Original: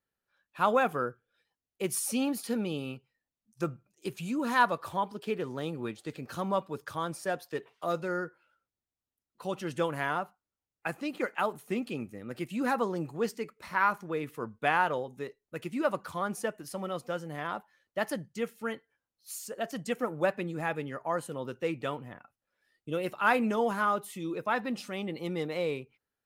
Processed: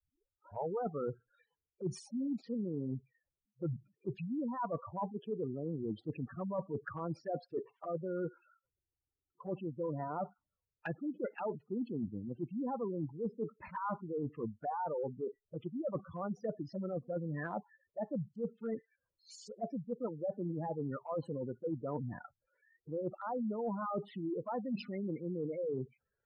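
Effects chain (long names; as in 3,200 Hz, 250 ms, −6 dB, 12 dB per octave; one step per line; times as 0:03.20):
turntable start at the beginning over 0.87 s
high-frequency loss of the air 160 metres
gate on every frequency bin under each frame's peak −10 dB strong
flanger swept by the level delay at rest 2.3 ms, full sweep at −31.5 dBFS
reversed playback
downward compressor 10 to 1, threshold −42 dBFS, peak gain reduction 18.5 dB
reversed playback
level +7.5 dB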